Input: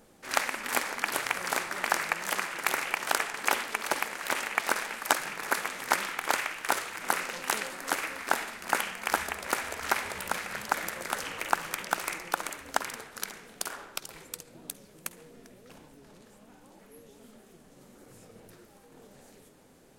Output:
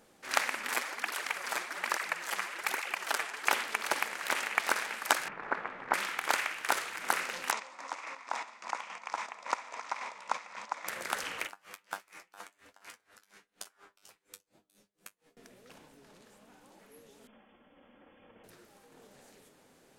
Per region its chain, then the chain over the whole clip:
0.74–3.48 HPF 190 Hz + tape flanging out of phase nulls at 1.2 Hz, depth 7.9 ms
5.28–5.94 LPF 1400 Hz + low shelf 120 Hz +9.5 dB
7.51–10.88 chopper 3.6 Hz, depth 60%, duty 30% + speaker cabinet 300–6700 Hz, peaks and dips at 390 Hz -10 dB, 1000 Hz +8 dB, 1600 Hz -9 dB, 3000 Hz -7 dB, 4300 Hz -5 dB
11.47–15.37 resonator 100 Hz, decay 0.2 s, mix 90% + dB-linear tremolo 4.2 Hz, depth 27 dB
17.27–18.44 minimum comb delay 3.7 ms + brick-wall FIR low-pass 3500 Hz
whole clip: LPF 3600 Hz 6 dB/oct; tilt +2 dB/oct; gain -1.5 dB

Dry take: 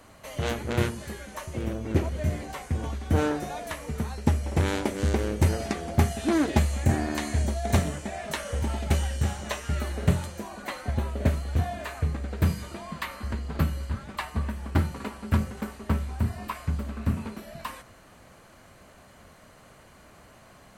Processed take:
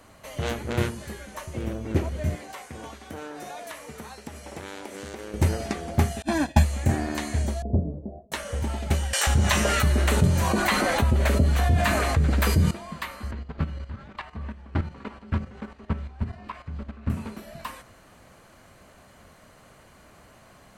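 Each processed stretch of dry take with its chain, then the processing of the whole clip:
2.35–5.34 HPF 470 Hz 6 dB/oct + compressor, threshold -33 dBFS
6.22–6.64 expander -22 dBFS + comb 1.2 ms, depth 94%
7.62–8.32 inverse Chebyshev low-pass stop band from 2400 Hz, stop band 70 dB + gate with hold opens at -29 dBFS, closes at -38 dBFS
9.13–12.71 bands offset in time highs, lows 0.14 s, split 670 Hz + fast leveller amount 70%
13.31–17.1 LPF 3800 Hz + level quantiser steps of 11 dB
whole clip: dry

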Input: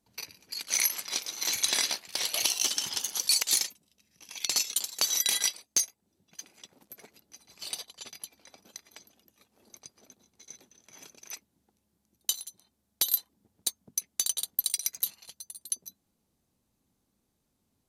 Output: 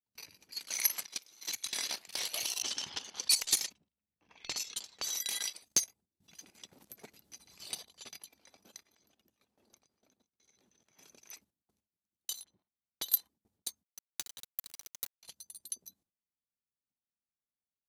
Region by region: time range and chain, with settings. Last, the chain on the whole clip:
1.06–1.78 gate -29 dBFS, range -14 dB + bell 820 Hz -3 dB 2.2 oct
2.62–5.09 low shelf 79 Hz +9.5 dB + low-pass opened by the level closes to 1200 Hz, open at -22 dBFS
5.62–7.99 low shelf 260 Hz +8 dB + mismatched tape noise reduction encoder only
8.83–10.99 compressor, threshold -53 dBFS + high shelf 7100 Hz -7.5 dB + tremolo saw up 1 Hz, depth 50%
12.44–13.12 low-pass opened by the level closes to 1600 Hz, open at -28 dBFS + high shelf 6200 Hz -11.5 dB
13.83–15.23 bell 10000 Hz -10 dB 0.44 oct + compressor, threshold -33 dBFS + requantised 6-bit, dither none
whole clip: gate with hold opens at -55 dBFS; level quantiser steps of 12 dB

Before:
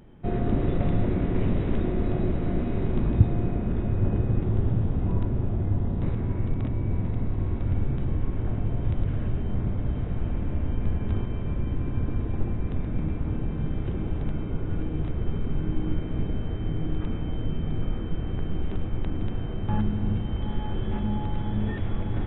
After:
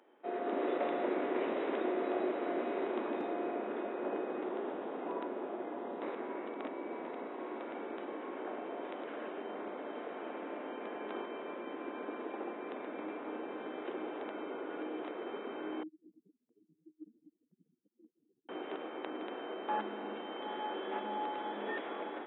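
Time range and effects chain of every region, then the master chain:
15.83–18.49 spectral contrast raised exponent 3.4 + dynamic EQ 150 Hz, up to -3 dB, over -51 dBFS, Q 4.4
whole clip: Bessel high-pass 550 Hz, order 8; high shelf 2600 Hz -10 dB; AGC gain up to 6 dB; gain -1.5 dB

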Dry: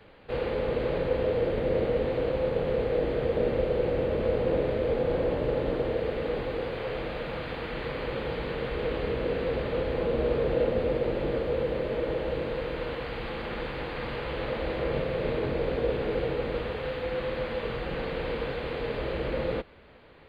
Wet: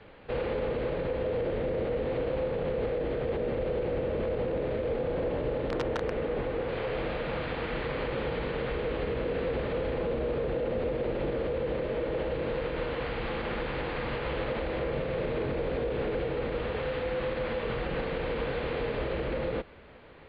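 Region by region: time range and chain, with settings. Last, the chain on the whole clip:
5.7–6.69 LPF 2800 Hz 6 dB/oct + wrapped overs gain 20 dB
whole clip: LPF 3800 Hz 12 dB/oct; limiter -25 dBFS; gain +2 dB

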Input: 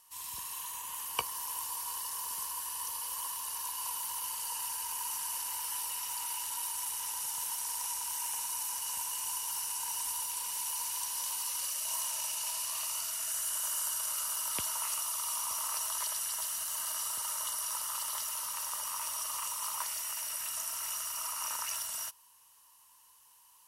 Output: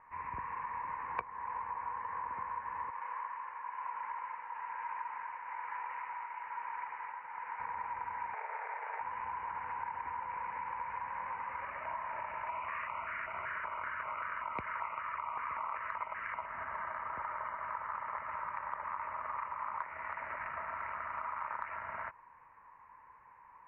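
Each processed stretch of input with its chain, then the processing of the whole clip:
2.9–7.6 HPF 1000 Hz 6 dB/oct + tremolo triangle 1.1 Hz, depth 55%
8.34–9.01 self-modulated delay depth 0.068 ms + frequency shift -38 Hz + brick-wall FIR high-pass 410 Hz
12.49–16.46 bell 2700 Hz +9 dB 2.8 oct + LFO notch square 2.6 Hz 790–1700 Hz
whole clip: steep low-pass 2300 Hz 96 dB/oct; compressor 4:1, threshold -49 dBFS; gain +12 dB

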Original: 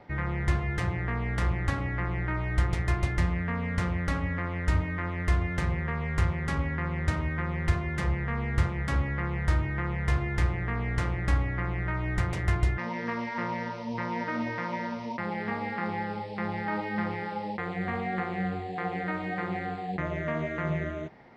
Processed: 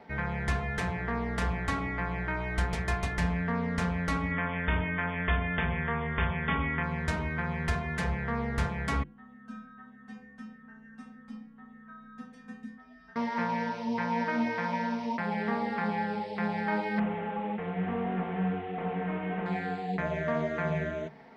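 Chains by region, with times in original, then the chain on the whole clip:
4.31–6.83 brick-wall FIR low-pass 3600 Hz + high shelf 2100 Hz +8 dB
9.03–13.16 LPF 3000 Hz 6 dB/oct + frequency shift -280 Hz + metallic resonator 250 Hz, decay 0.51 s, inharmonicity 0.002
16.99–19.46 delta modulation 16 kbps, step -42.5 dBFS + air absorption 97 m
whole clip: HPF 89 Hz 6 dB/oct; notches 50/100/150/200/250/300/350 Hz; comb 4.5 ms, depth 67%

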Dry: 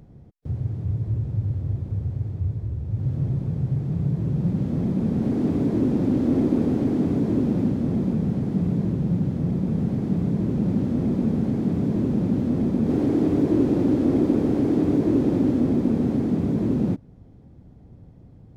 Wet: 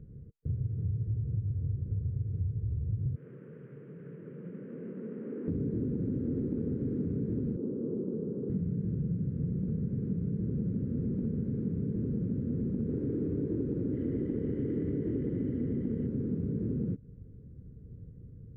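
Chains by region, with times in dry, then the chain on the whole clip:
3.16–5.48 delta modulation 16 kbps, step -37.5 dBFS + HPF 200 Hz 24 dB/oct + three-band isolator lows -13 dB, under 440 Hz, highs -13 dB, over 2000 Hz
7.56–8.5 Chebyshev band-pass 360–1100 Hz + tilt -2.5 dB/oct
13.93–16.07 small resonant body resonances 2000/3000 Hz, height 17 dB, ringing for 25 ms + Doppler distortion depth 0.13 ms
whole clip: EQ curve 140 Hz 0 dB, 320 Hz -8 dB, 460 Hz 0 dB, 740 Hz -30 dB, 1500 Hz -11 dB, 4300 Hz -29 dB; compressor, threshold -29 dBFS

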